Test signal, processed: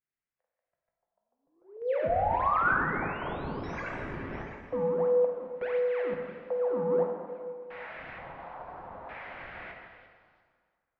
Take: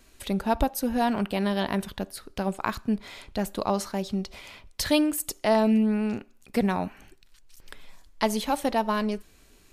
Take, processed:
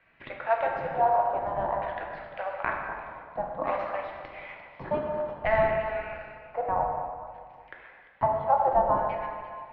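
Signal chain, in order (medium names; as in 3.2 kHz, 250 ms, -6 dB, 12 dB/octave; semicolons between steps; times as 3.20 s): chunks repeated in reverse 147 ms, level -12 dB; rippled Chebyshev high-pass 490 Hz, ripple 3 dB; in parallel at -8.5 dB: decimation with a swept rate 37×, swing 160% 1.5 Hz; on the sum: LFO low-pass square 0.55 Hz 940–2100 Hz; distance through air 270 m; repeats whose band climbs or falls 346 ms, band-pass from 3.6 kHz, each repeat 0.7 oct, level -10 dB; plate-style reverb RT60 1.9 s, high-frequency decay 0.6×, DRR 0 dB; trim -2 dB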